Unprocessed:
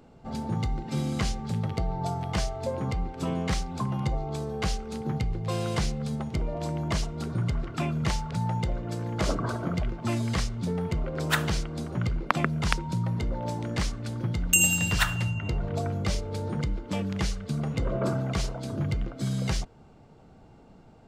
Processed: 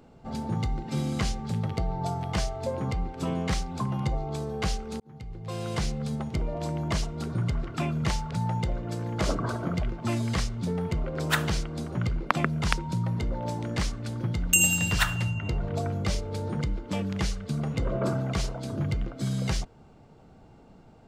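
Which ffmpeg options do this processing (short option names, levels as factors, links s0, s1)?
-filter_complex "[0:a]asplit=2[s0][s1];[s0]atrim=end=5,asetpts=PTS-STARTPTS,afade=t=out:st=4.996:d=0.004:c=hsin[s2];[s1]atrim=start=5,asetpts=PTS-STARTPTS,afade=t=in:d=0.96[s3];[s2][s3]concat=n=2:v=0:a=1"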